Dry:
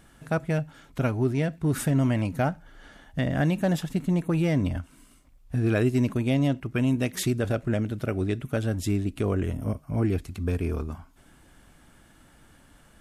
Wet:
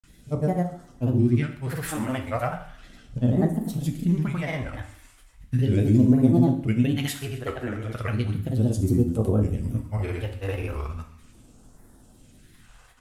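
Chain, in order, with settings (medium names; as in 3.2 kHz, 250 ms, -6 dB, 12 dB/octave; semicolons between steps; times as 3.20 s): dynamic bell 5.7 kHz, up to -8 dB, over -54 dBFS, Q 0.91; phase shifter stages 2, 0.36 Hz, lowest notch 160–2500 Hz; granulator, pitch spread up and down by 3 st; feedback echo behind a high-pass 129 ms, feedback 61%, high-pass 1.5 kHz, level -18.5 dB; plate-style reverb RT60 0.56 s, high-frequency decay 0.95×, pre-delay 0 ms, DRR 4.5 dB; trim +3.5 dB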